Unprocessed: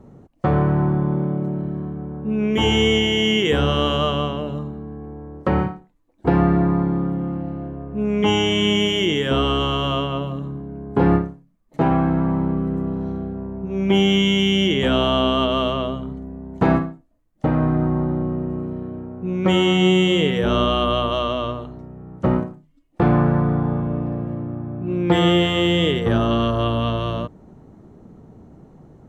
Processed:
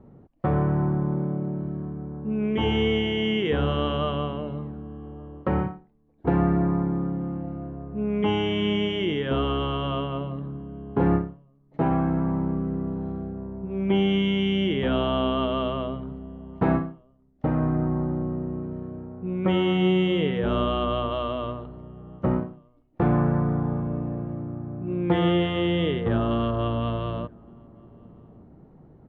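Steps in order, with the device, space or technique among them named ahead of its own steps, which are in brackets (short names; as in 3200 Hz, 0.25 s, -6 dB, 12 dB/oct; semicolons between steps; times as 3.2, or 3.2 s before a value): shout across a valley (air absorption 310 m; outdoor echo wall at 200 m, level -28 dB); gain -4.5 dB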